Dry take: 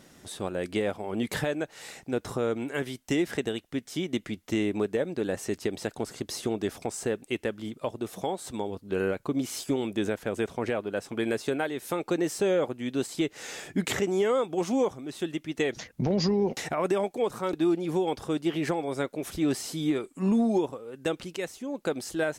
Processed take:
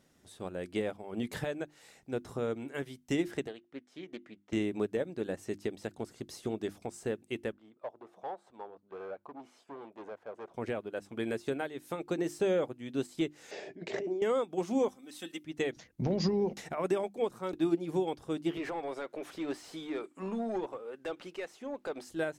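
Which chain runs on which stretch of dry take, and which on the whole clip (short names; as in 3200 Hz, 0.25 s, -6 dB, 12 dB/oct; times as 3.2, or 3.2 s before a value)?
3.47–4.53 band-pass 990 Hz, Q 0.5 + Doppler distortion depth 0.16 ms
7.52–10.54 hard clip -28.5 dBFS + band-pass 900 Hz, Q 0.94 + dynamic EQ 700 Hz, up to +6 dB, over -49 dBFS, Q 1.1
13.51–14.22 negative-ratio compressor -34 dBFS + speaker cabinet 200–5200 Hz, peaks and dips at 390 Hz +10 dB, 620 Hz +10 dB, 1300 Hz -9 dB, 3300 Hz -5 dB
14.88–15.44 tilt +2.5 dB/oct + notch 6700 Hz, Q 18 + comb 3.9 ms, depth 70%
18.57–22.05 HPF 340 Hz 6 dB/oct + compressor 2:1, threshold -36 dBFS + overdrive pedal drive 21 dB, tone 1500 Hz, clips at -18 dBFS
whole clip: low shelf 380 Hz +3.5 dB; notches 50/100/150/200/250/300/350 Hz; upward expander 1.5:1, over -40 dBFS; gain -4 dB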